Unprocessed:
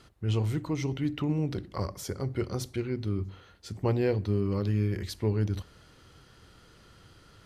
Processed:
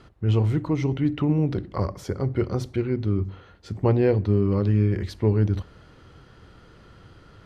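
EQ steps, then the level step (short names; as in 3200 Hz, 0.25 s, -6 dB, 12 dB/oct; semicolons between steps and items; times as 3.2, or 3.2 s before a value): LPF 1700 Hz 6 dB/oct; +7.0 dB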